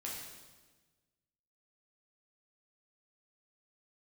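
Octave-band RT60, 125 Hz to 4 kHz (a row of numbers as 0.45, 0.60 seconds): 1.7, 1.5, 1.4, 1.2, 1.2, 1.2 seconds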